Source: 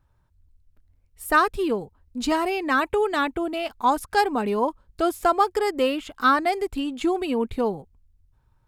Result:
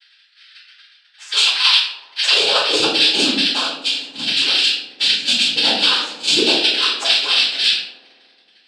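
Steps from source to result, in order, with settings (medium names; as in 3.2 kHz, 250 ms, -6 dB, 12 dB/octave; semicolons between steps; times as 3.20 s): four frequency bands reordered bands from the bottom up 2413; hum notches 50/100/150/200 Hz; reverb removal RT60 1.1 s; peak limiter -17 dBFS, peak gain reduction 10 dB; 3.63–4.23 s: level held to a coarse grid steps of 12 dB; noise-vocoded speech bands 8; tremolo saw down 11 Hz, depth 75%; high-pass sweep 1.2 kHz -> 270 Hz, 1.28–3.03 s; feedback echo behind a band-pass 73 ms, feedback 81%, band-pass 420 Hz, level -13.5 dB; simulated room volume 100 m³, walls mixed, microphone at 4.1 m; trim +1 dB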